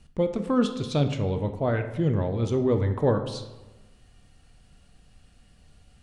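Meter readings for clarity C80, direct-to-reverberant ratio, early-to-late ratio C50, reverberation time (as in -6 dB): 11.5 dB, 7.0 dB, 9.5 dB, 1.1 s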